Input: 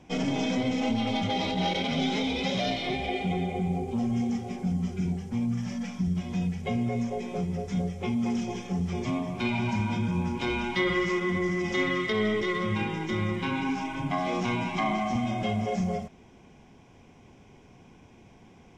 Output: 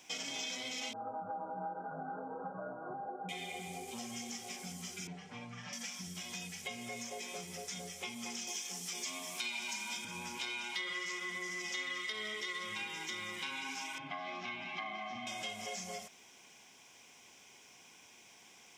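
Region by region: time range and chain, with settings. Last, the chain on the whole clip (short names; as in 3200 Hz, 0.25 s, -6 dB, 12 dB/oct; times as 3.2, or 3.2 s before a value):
0.93–3.29 brick-wall FIR low-pass 1600 Hz + comb 6.3 ms, depth 90%
5.07–5.73 comb 6.7 ms, depth 72% + upward compressor, threshold -31 dBFS + LPF 2300 Hz
8.47–10.05 steep high-pass 160 Hz + high shelf 4000 Hz +10 dB
13.98–15.27 air absorption 300 m + notch comb 480 Hz
whole clip: differentiator; compressor 3:1, threshold -53 dBFS; gain +12.5 dB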